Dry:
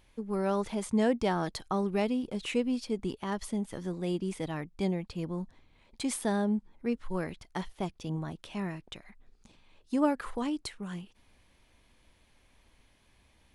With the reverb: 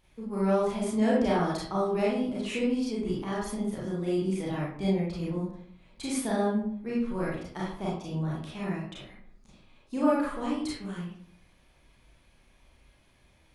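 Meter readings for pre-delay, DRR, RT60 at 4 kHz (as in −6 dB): 29 ms, −7.0 dB, 0.35 s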